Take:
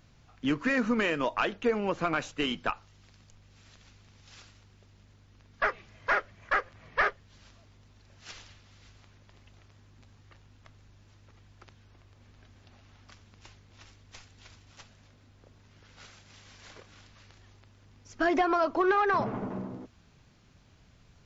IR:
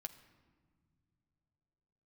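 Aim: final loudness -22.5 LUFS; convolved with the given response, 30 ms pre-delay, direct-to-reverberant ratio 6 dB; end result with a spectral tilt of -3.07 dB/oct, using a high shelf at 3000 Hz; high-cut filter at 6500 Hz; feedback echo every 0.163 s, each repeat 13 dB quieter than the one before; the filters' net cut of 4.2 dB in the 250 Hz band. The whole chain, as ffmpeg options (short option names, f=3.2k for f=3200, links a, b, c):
-filter_complex "[0:a]lowpass=6.5k,equalizer=f=250:t=o:g=-5.5,highshelf=f=3k:g=-6,aecho=1:1:163|326|489:0.224|0.0493|0.0108,asplit=2[a][b];[1:a]atrim=start_sample=2205,adelay=30[c];[b][c]afir=irnorm=-1:irlink=0,volume=-2dB[d];[a][d]amix=inputs=2:normalize=0,volume=7.5dB"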